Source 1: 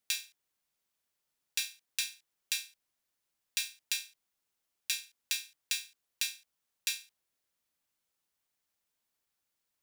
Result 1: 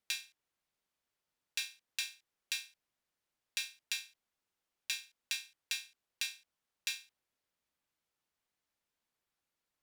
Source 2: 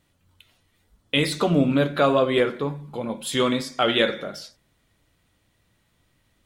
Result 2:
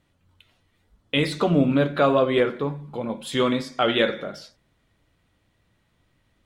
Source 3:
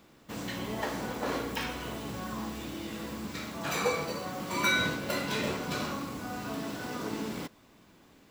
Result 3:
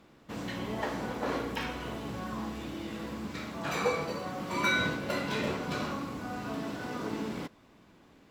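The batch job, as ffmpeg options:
-af "aemphasis=mode=reproduction:type=cd"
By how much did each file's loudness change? −4.0, 0.0, −0.5 LU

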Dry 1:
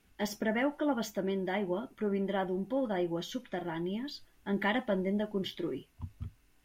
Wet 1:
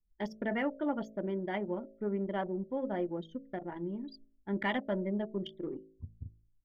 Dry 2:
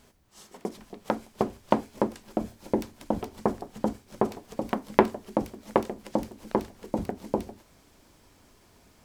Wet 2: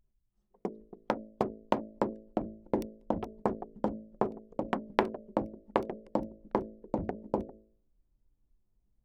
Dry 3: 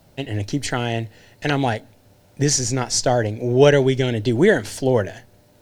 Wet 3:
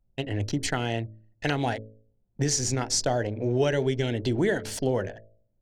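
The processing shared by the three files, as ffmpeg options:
-af "anlmdn=6.31,acompressor=threshold=-22dB:ratio=2.5,bandreject=frequency=54.4:width_type=h:width=4,bandreject=frequency=108.8:width_type=h:width=4,bandreject=frequency=163.2:width_type=h:width=4,bandreject=frequency=217.6:width_type=h:width=4,bandreject=frequency=272:width_type=h:width=4,bandreject=frequency=326.4:width_type=h:width=4,bandreject=frequency=380.8:width_type=h:width=4,bandreject=frequency=435.2:width_type=h:width=4,bandreject=frequency=489.6:width_type=h:width=4,bandreject=frequency=544:width_type=h:width=4,bandreject=frequency=598.4:width_type=h:width=4,bandreject=frequency=652.8:width_type=h:width=4,volume=-1.5dB"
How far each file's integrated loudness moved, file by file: −2.5, −5.0, −7.5 LU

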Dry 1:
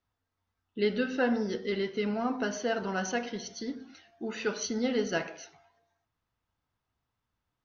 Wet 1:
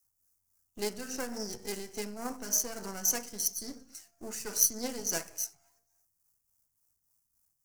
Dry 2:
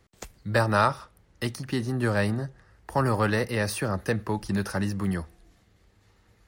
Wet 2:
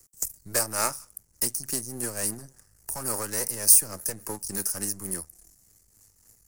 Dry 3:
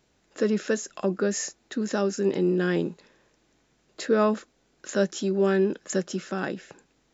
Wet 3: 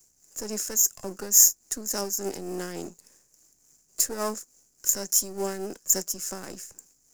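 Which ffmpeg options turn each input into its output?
-filter_complex "[0:a]aeval=exprs='if(lt(val(0),0),0.251*val(0),val(0))':channel_layout=same,acrossover=split=220[link_01][link_02];[link_01]acompressor=threshold=-40dB:ratio=5[link_03];[link_02]tremolo=f=3.5:d=0.59[link_04];[link_03][link_04]amix=inputs=2:normalize=0,aexciter=amount=12.5:drive=8.9:freq=5600,volume=-3dB"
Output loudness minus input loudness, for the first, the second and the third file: −0.5, +2.0, +2.5 LU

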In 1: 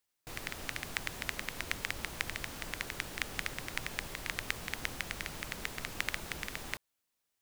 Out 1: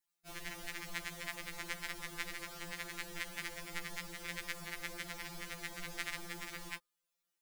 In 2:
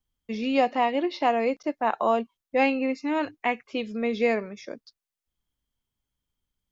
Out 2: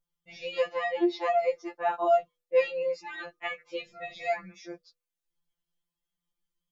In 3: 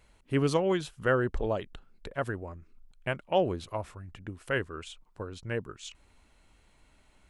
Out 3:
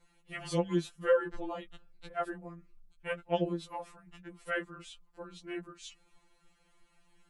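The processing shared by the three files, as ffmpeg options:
-af "adynamicequalizer=threshold=0.00251:dfrequency=2700:dqfactor=3.9:tfrequency=2700:tqfactor=3.9:attack=5:release=100:ratio=0.375:range=2.5:mode=cutabove:tftype=bell,bandreject=frequency=245.7:width_type=h:width=4,bandreject=frequency=491.4:width_type=h:width=4,bandreject=frequency=737.1:width_type=h:width=4,bandreject=frequency=982.8:width_type=h:width=4,bandreject=frequency=1228.5:width_type=h:width=4,afftfilt=real='re*2.83*eq(mod(b,8),0)':imag='im*2.83*eq(mod(b,8),0)':win_size=2048:overlap=0.75,volume=-1.5dB"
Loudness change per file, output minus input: −4.5, −3.5, −3.5 LU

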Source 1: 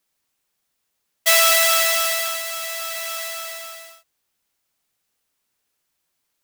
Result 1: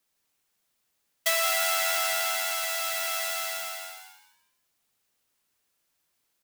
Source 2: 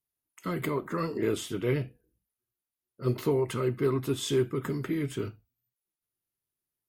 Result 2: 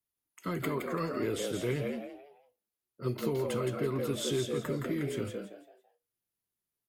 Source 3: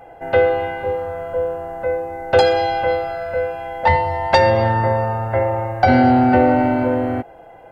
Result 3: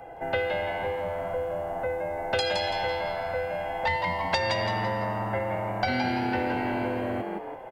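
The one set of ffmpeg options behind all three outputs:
-filter_complex "[0:a]asplit=5[link_01][link_02][link_03][link_04][link_05];[link_02]adelay=167,afreqshift=93,volume=-5.5dB[link_06];[link_03]adelay=334,afreqshift=186,volume=-15.7dB[link_07];[link_04]adelay=501,afreqshift=279,volume=-25.8dB[link_08];[link_05]adelay=668,afreqshift=372,volume=-36dB[link_09];[link_01][link_06][link_07][link_08][link_09]amix=inputs=5:normalize=0,acrossover=split=120|2000[link_10][link_11][link_12];[link_10]acompressor=threshold=-40dB:ratio=4[link_13];[link_11]acompressor=threshold=-27dB:ratio=4[link_14];[link_12]acompressor=threshold=-25dB:ratio=4[link_15];[link_13][link_14][link_15]amix=inputs=3:normalize=0,volume=-2dB"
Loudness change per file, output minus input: −8.5, −3.5, −11.0 LU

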